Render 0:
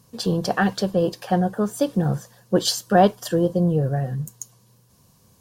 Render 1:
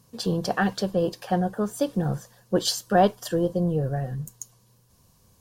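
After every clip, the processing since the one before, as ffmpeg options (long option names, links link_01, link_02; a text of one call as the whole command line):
ffmpeg -i in.wav -af "asubboost=boost=3:cutoff=74,volume=-3dB" out.wav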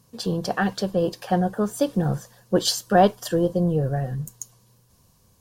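ffmpeg -i in.wav -af "dynaudnorm=framelen=300:gausssize=7:maxgain=3dB" out.wav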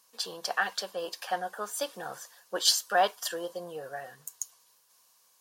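ffmpeg -i in.wav -af "highpass=1000" out.wav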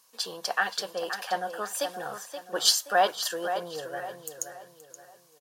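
ffmpeg -i in.wav -filter_complex "[0:a]asplit=2[link_01][link_02];[link_02]adelay=525,lowpass=frequency=3600:poles=1,volume=-8.5dB,asplit=2[link_03][link_04];[link_04]adelay=525,lowpass=frequency=3600:poles=1,volume=0.38,asplit=2[link_05][link_06];[link_06]adelay=525,lowpass=frequency=3600:poles=1,volume=0.38,asplit=2[link_07][link_08];[link_08]adelay=525,lowpass=frequency=3600:poles=1,volume=0.38[link_09];[link_01][link_03][link_05][link_07][link_09]amix=inputs=5:normalize=0,volume=2dB" out.wav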